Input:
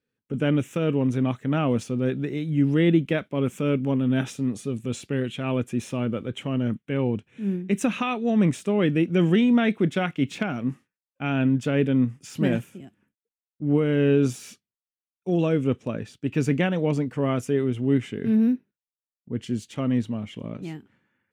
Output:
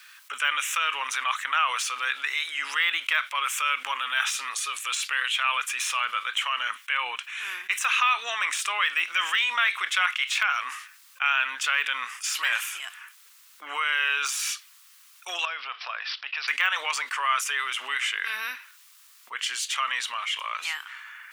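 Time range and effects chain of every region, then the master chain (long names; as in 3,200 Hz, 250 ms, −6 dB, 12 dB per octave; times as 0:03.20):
0:15.45–0:16.48: parametric band 710 Hz +14 dB 0.32 octaves + downward compressor 2 to 1, threshold −44 dBFS + bad sample-rate conversion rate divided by 4×, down none, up filtered
whole clip: de-essing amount 100%; Chebyshev high-pass filter 1,100 Hz, order 4; envelope flattener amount 50%; level +8.5 dB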